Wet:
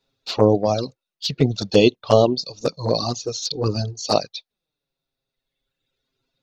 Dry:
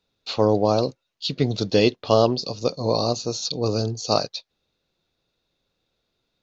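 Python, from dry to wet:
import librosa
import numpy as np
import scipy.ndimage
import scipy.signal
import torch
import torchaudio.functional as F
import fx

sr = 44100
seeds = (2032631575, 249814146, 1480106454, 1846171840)

y = fx.dereverb_blind(x, sr, rt60_s=1.8)
y = fx.env_flanger(y, sr, rest_ms=7.5, full_db=-16.5)
y = y * librosa.db_to_amplitude(5.5)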